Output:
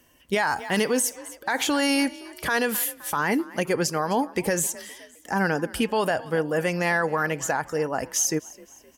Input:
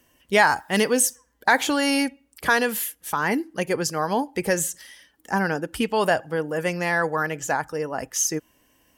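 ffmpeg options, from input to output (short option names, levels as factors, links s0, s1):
-filter_complex "[0:a]asplit=4[s0][s1][s2][s3];[s1]adelay=259,afreqshift=39,volume=0.075[s4];[s2]adelay=518,afreqshift=78,volume=0.0347[s5];[s3]adelay=777,afreqshift=117,volume=0.0158[s6];[s0][s4][s5][s6]amix=inputs=4:normalize=0,alimiter=limit=0.158:level=0:latency=1:release=75,volume=1.26"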